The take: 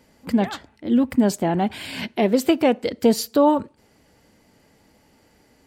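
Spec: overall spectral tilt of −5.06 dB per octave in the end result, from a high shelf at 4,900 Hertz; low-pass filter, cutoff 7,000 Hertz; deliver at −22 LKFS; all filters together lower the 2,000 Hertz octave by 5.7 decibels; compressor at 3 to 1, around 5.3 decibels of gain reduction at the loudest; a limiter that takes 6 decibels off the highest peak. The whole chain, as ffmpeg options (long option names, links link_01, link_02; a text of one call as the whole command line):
ffmpeg -i in.wav -af "lowpass=7000,equalizer=frequency=2000:width_type=o:gain=-8.5,highshelf=frequency=4900:gain=7.5,acompressor=threshold=-19dB:ratio=3,volume=5dB,alimiter=limit=-11dB:level=0:latency=1" out.wav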